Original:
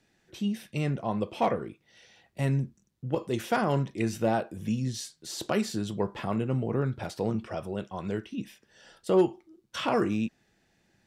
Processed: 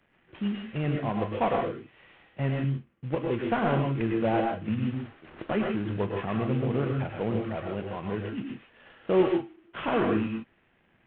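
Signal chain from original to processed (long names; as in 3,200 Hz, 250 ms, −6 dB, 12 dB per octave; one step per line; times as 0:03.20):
variable-slope delta modulation 16 kbit/s
on a send: convolution reverb, pre-delay 97 ms, DRR 2 dB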